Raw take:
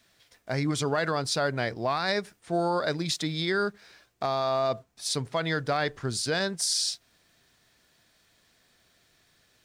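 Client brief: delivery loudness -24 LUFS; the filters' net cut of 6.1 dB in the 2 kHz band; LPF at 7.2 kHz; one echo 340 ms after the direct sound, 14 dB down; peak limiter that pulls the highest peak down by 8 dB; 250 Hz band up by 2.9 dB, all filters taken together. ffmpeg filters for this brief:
-af "lowpass=7200,equalizer=f=250:t=o:g=4.5,equalizer=f=2000:t=o:g=-8.5,alimiter=limit=0.0631:level=0:latency=1,aecho=1:1:340:0.2,volume=2.99"

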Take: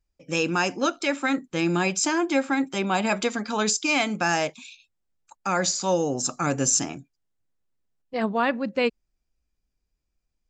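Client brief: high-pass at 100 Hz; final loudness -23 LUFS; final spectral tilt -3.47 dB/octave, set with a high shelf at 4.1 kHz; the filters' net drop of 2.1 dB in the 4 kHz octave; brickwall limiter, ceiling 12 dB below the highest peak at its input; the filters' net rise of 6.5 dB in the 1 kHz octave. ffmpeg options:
-af "highpass=100,equalizer=f=1000:t=o:g=8.5,equalizer=f=4000:t=o:g=-7,highshelf=f=4100:g=5,volume=1.78,alimiter=limit=0.224:level=0:latency=1"

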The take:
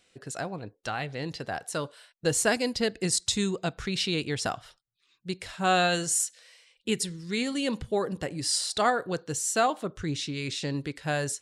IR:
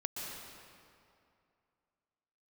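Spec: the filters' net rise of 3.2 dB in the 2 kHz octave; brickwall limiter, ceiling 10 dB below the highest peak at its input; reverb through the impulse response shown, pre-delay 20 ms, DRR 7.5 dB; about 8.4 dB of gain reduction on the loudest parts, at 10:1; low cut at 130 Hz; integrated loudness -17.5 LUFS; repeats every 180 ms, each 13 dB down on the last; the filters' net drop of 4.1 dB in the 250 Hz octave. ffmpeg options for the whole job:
-filter_complex "[0:a]highpass=130,equalizer=f=250:t=o:g=-5,equalizer=f=2000:t=o:g=4.5,acompressor=threshold=0.0501:ratio=10,alimiter=level_in=1.12:limit=0.0631:level=0:latency=1,volume=0.891,aecho=1:1:180|360|540:0.224|0.0493|0.0108,asplit=2[s0][s1];[1:a]atrim=start_sample=2205,adelay=20[s2];[s1][s2]afir=irnorm=-1:irlink=0,volume=0.335[s3];[s0][s3]amix=inputs=2:normalize=0,volume=7.5"

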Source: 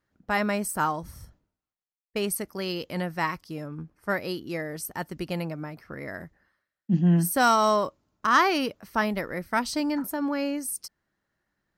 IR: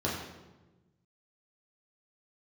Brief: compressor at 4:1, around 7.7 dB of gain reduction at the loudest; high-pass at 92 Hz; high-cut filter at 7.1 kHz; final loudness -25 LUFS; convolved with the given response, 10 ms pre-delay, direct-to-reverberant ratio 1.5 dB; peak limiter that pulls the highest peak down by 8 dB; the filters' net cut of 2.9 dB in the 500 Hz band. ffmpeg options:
-filter_complex "[0:a]highpass=92,lowpass=7100,equalizer=f=500:t=o:g=-4,acompressor=threshold=0.0501:ratio=4,alimiter=limit=0.075:level=0:latency=1,asplit=2[s0][s1];[1:a]atrim=start_sample=2205,adelay=10[s2];[s1][s2]afir=irnorm=-1:irlink=0,volume=0.316[s3];[s0][s3]amix=inputs=2:normalize=0,volume=1.88"

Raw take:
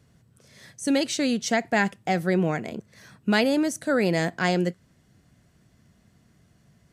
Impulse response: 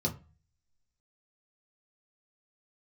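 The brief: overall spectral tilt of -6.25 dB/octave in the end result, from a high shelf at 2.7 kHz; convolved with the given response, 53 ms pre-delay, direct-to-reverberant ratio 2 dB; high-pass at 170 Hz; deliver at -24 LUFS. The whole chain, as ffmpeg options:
-filter_complex "[0:a]highpass=170,highshelf=f=2700:g=-7,asplit=2[s0][s1];[1:a]atrim=start_sample=2205,adelay=53[s2];[s1][s2]afir=irnorm=-1:irlink=0,volume=0.447[s3];[s0][s3]amix=inputs=2:normalize=0,volume=0.631"

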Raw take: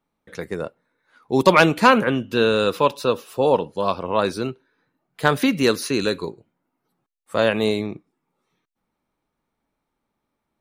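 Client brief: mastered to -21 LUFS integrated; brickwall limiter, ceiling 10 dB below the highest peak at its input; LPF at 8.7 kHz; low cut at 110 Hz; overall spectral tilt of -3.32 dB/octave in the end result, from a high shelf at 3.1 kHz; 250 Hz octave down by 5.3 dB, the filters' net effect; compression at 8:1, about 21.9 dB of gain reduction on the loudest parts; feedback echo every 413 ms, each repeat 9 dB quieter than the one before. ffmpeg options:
-af "highpass=110,lowpass=8700,equalizer=f=250:t=o:g=-6.5,highshelf=f=3100:g=8.5,acompressor=threshold=0.0282:ratio=8,alimiter=level_in=1.12:limit=0.0631:level=0:latency=1,volume=0.891,aecho=1:1:413|826|1239|1652:0.355|0.124|0.0435|0.0152,volume=7.5"

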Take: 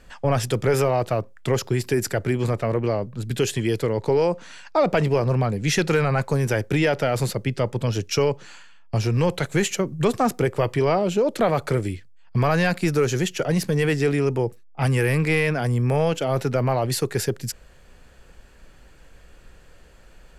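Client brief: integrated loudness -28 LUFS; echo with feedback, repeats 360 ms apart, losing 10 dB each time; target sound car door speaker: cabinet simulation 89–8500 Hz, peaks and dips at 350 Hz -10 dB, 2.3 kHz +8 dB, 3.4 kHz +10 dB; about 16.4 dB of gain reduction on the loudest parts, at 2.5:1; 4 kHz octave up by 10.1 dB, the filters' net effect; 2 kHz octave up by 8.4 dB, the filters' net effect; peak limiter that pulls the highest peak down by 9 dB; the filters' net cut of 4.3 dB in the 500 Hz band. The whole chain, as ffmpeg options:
-af "equalizer=f=500:t=o:g=-3,equalizer=f=2000:t=o:g=3.5,equalizer=f=4000:t=o:g=3.5,acompressor=threshold=0.00708:ratio=2.5,alimiter=level_in=2.51:limit=0.0631:level=0:latency=1,volume=0.398,highpass=89,equalizer=f=350:t=q:w=4:g=-10,equalizer=f=2300:t=q:w=4:g=8,equalizer=f=3400:t=q:w=4:g=10,lowpass=f=8500:w=0.5412,lowpass=f=8500:w=1.3066,aecho=1:1:360|720|1080|1440:0.316|0.101|0.0324|0.0104,volume=4.22"

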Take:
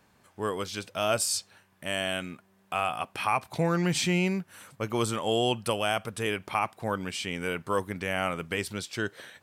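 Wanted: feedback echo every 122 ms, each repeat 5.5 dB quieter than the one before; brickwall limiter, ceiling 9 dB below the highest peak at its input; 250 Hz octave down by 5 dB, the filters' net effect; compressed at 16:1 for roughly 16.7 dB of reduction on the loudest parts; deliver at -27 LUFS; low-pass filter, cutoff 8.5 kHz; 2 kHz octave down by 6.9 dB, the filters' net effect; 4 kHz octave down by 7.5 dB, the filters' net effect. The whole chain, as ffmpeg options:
-af "lowpass=8500,equalizer=f=250:t=o:g=-8.5,equalizer=f=2000:t=o:g=-7,equalizer=f=4000:t=o:g=-7.5,acompressor=threshold=0.00891:ratio=16,alimiter=level_in=3.98:limit=0.0631:level=0:latency=1,volume=0.251,aecho=1:1:122|244|366|488|610|732|854:0.531|0.281|0.149|0.079|0.0419|0.0222|0.0118,volume=9.44"

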